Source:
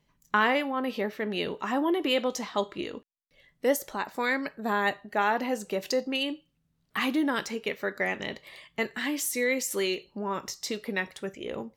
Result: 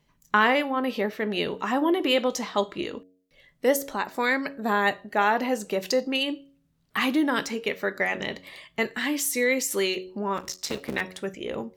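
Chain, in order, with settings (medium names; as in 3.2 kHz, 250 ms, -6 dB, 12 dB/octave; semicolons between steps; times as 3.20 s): 10.37–11.01 s: cycle switcher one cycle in 3, muted; de-hum 92.44 Hz, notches 7; trim +3.5 dB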